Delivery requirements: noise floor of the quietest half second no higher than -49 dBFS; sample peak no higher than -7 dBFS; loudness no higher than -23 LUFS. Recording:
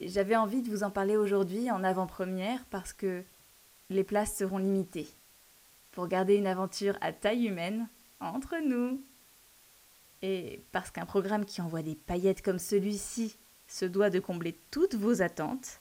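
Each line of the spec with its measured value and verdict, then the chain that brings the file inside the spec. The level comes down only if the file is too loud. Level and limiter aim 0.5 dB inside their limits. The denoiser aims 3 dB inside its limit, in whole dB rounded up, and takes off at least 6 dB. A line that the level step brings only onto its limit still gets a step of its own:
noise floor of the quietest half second -61 dBFS: pass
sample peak -15.5 dBFS: pass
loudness -32.0 LUFS: pass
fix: none needed

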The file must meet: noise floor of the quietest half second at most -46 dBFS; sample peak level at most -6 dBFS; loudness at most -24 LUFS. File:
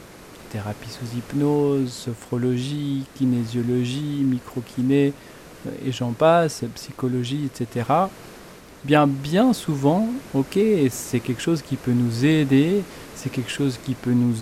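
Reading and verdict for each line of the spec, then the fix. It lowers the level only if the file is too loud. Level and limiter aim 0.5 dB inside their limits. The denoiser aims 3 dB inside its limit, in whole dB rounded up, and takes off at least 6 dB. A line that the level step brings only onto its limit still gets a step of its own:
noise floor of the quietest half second -43 dBFS: fail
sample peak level -5.0 dBFS: fail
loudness -22.5 LUFS: fail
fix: noise reduction 6 dB, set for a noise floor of -43 dBFS; trim -2 dB

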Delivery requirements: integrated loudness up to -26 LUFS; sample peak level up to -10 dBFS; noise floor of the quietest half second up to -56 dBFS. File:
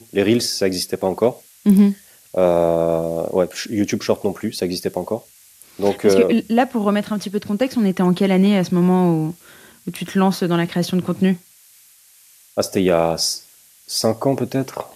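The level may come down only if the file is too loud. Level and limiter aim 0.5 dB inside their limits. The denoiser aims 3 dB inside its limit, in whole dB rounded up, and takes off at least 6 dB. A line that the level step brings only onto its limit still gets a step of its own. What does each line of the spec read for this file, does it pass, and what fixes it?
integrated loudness -19.0 LUFS: fail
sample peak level -3.5 dBFS: fail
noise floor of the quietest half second -50 dBFS: fail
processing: trim -7.5 dB

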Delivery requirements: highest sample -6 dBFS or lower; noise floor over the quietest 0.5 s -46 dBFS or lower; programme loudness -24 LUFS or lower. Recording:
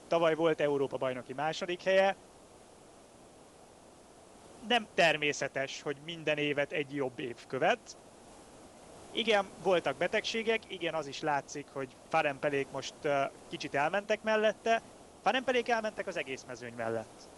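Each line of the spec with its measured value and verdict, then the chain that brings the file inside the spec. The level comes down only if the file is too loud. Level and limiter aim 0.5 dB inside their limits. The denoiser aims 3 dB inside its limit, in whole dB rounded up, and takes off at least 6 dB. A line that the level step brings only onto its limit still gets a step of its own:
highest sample -13.5 dBFS: pass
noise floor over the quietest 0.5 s -57 dBFS: pass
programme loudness -32.5 LUFS: pass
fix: none needed

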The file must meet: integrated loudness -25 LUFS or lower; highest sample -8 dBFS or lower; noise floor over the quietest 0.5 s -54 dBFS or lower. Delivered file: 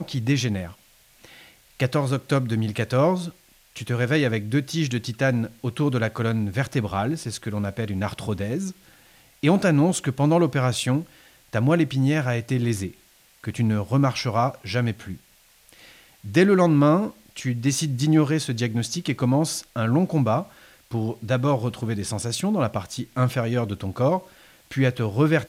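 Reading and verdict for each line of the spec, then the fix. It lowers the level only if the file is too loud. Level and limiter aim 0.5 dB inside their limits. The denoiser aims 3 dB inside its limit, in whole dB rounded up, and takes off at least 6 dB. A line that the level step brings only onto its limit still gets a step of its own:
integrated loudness -23.5 LUFS: fail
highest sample -6.5 dBFS: fail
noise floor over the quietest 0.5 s -57 dBFS: pass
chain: trim -2 dB

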